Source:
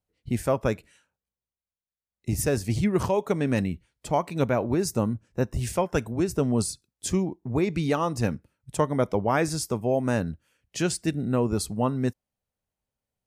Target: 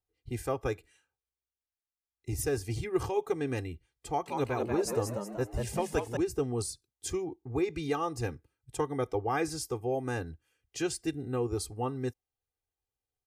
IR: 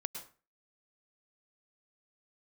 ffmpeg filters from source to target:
-filter_complex "[0:a]aecho=1:1:2.5:0.94,asettb=1/sr,asplit=3[a][b][c];[a]atrim=end=4.074[d];[b]atrim=start=4.07:end=6.17,asetpts=PTS-STARTPTS,afade=t=in:d=0.004:c=qsin,afade=t=out:st=2.096:d=0.004:c=qsin,asplit=6[e][f][g][h][i][j];[f]adelay=188,afreqshift=96,volume=-5dB[k];[g]adelay=376,afreqshift=192,volume=-12.5dB[l];[h]adelay=564,afreqshift=288,volume=-20.1dB[m];[i]adelay=752,afreqshift=384,volume=-27.6dB[n];[j]adelay=940,afreqshift=480,volume=-35.1dB[o];[e][k][l][m][n][o]amix=inputs=6:normalize=0,atrim=end_sample=92610[p];[c]atrim=start=6.166[q];[d][p]acrossfade=d=0.004:c1=hsin:c2=qsin[r];[r][q]acrossfade=d=0.004:c1=qsin:c2=hsin,volume=-9dB"

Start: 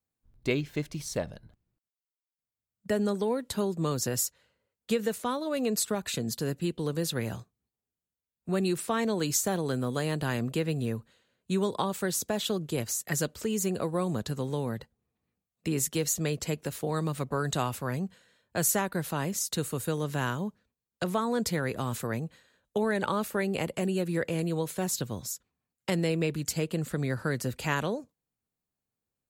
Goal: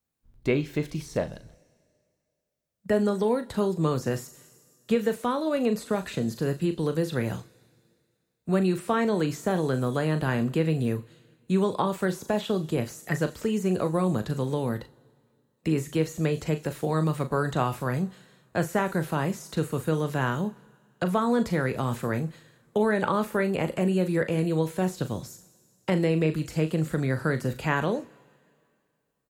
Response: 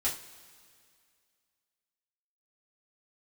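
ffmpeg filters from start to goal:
-filter_complex "[0:a]asplit=2[a][b];[b]adelay=38,volume=-12dB[c];[a][c]amix=inputs=2:normalize=0,asplit=2[d][e];[1:a]atrim=start_sample=2205[f];[e][f]afir=irnorm=-1:irlink=0,volume=-17dB[g];[d][g]amix=inputs=2:normalize=0,acrossover=split=2500[h][i];[i]acompressor=threshold=-47dB:ratio=4:attack=1:release=60[j];[h][j]amix=inputs=2:normalize=0,volume=3dB"

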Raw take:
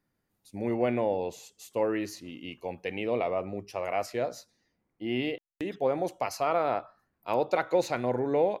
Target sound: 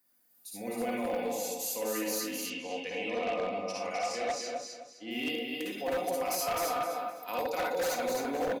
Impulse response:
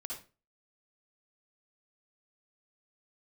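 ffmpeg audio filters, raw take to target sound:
-filter_complex "[0:a]acrossover=split=280[a][b];[b]acompressor=threshold=-43dB:ratio=1.5[c];[a][c]amix=inputs=2:normalize=0,aemphasis=mode=production:type=riaa,aecho=1:1:4:0.6,aecho=1:1:258|516|774|1032:0.631|0.183|0.0531|0.0154[d];[1:a]atrim=start_sample=2205[e];[d][e]afir=irnorm=-1:irlink=0,aeval=exprs='0.0447*(abs(mod(val(0)/0.0447+3,4)-2)-1)':c=same,asettb=1/sr,asplit=3[f][g][h];[f]atrim=end=2.504[i];[g]atrim=start=2.5:end=5.11,asetpts=PTS-STARTPTS,afade=t=in:d=0.004:c=qsin,afade=t=out:st=2.606:d=0.004:c=qsin,lowpass=f=7.4k:w=0.5412,lowpass=f=7.4k:w=1.3066[j];[h]atrim=start=5.106[k];[i][j]acrossfade=d=0.004:c1=hsin:c2=qsin[l];[l][k]acrossfade=d=0.004:c1=qsin:c2=hsin,volume=2dB"

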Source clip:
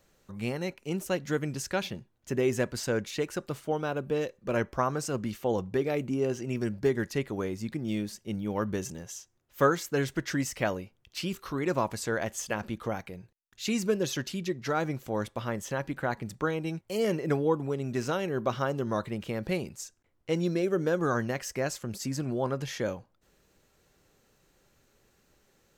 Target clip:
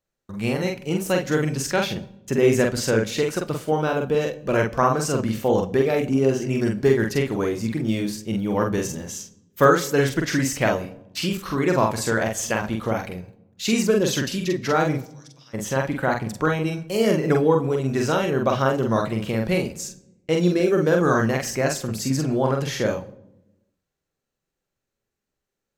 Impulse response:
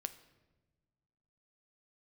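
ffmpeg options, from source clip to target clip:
-filter_complex "[0:a]agate=range=-26dB:threshold=-53dB:ratio=16:detection=peak,asplit=3[a][b][c];[a]afade=t=out:st=15:d=0.02[d];[b]bandpass=f=5.5k:t=q:w=5.4:csg=0,afade=t=in:st=15:d=0.02,afade=t=out:st=15.53:d=0.02[e];[c]afade=t=in:st=15.53:d=0.02[f];[d][e][f]amix=inputs=3:normalize=0,asplit=2[g][h];[1:a]atrim=start_sample=2205,asetrate=70560,aresample=44100,adelay=45[i];[h][i]afir=irnorm=-1:irlink=0,volume=3.5dB[j];[g][j]amix=inputs=2:normalize=0,volume=7dB"

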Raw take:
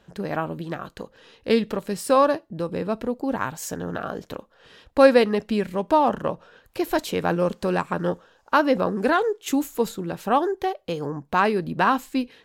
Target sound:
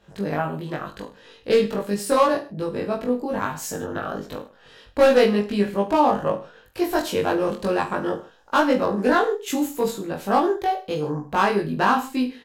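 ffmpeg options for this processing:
-filter_complex "[0:a]asoftclip=type=hard:threshold=-12dB,asplit=2[a][b];[b]adelay=20,volume=-4.5dB[c];[a][c]amix=inputs=2:normalize=0,asplit=2[d][e];[e]aecho=0:1:20|44|72.8|107.4|148.8:0.631|0.398|0.251|0.158|0.1[f];[d][f]amix=inputs=2:normalize=0,volume=-3dB"

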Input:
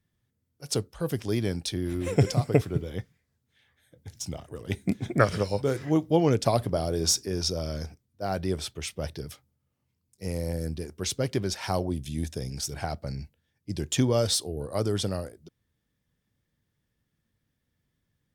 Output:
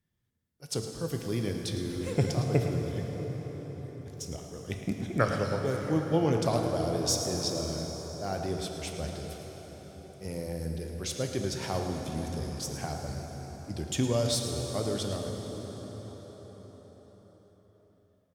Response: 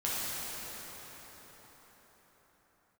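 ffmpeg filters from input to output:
-filter_complex "[0:a]aecho=1:1:110:0.251,asplit=2[a][b];[1:a]atrim=start_sample=2205,asetrate=40131,aresample=44100[c];[b][c]afir=irnorm=-1:irlink=0,volume=-9dB[d];[a][d]amix=inputs=2:normalize=0,volume=-7.5dB"

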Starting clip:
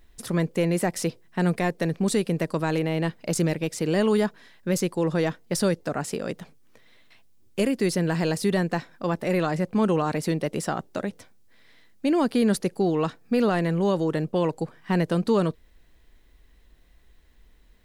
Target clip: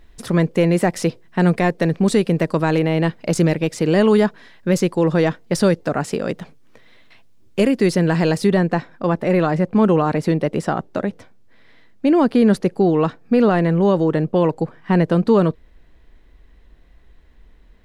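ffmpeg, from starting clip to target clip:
-af "asetnsamples=n=441:p=0,asendcmd='8.47 lowpass f 1900',lowpass=f=3.8k:p=1,volume=7.5dB"

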